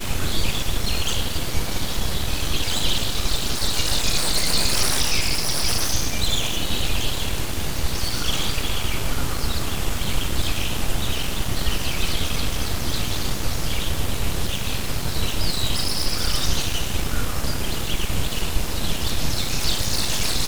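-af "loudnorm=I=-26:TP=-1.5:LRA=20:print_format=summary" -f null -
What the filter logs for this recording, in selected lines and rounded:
Input Integrated:    -24.1 LUFS
Input True Peak:      -4.5 dBTP
Input LRA:             4.2 LU
Input Threshold:     -34.1 LUFS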